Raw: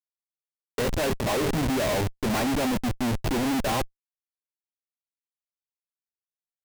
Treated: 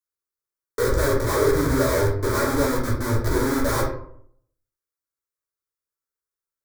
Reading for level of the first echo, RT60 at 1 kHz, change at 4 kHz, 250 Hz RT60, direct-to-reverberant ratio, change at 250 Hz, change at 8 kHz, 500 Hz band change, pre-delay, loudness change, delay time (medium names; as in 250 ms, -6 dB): no echo, 0.60 s, -1.5 dB, 0.70 s, -4.0 dB, +1.0 dB, +4.0 dB, +6.5 dB, 8 ms, +4.0 dB, no echo